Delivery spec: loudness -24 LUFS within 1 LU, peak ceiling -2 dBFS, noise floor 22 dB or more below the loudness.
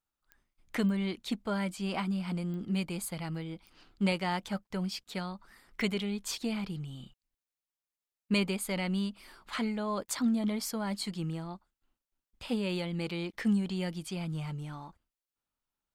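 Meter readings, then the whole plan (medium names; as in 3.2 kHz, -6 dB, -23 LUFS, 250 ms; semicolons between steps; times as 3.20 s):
clicks found 6; loudness -34.0 LUFS; peak level -18.5 dBFS; loudness target -24.0 LUFS
-> de-click; trim +10 dB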